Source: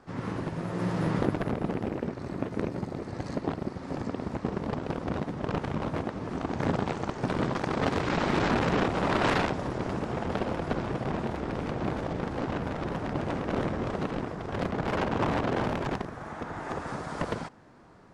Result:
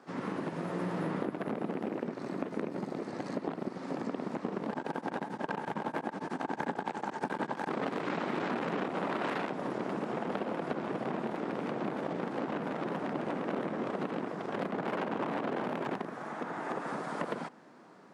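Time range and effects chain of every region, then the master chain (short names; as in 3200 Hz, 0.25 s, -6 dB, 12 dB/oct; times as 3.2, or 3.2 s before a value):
4.7–7.69 high shelf 4600 Hz +9 dB + small resonant body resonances 870/1600 Hz, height 11 dB, ringing for 25 ms + beating tremolo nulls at 11 Hz
whole clip: HPF 180 Hz 24 dB/oct; dynamic EQ 5800 Hz, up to -8 dB, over -54 dBFS, Q 0.88; compressor, threshold -30 dBFS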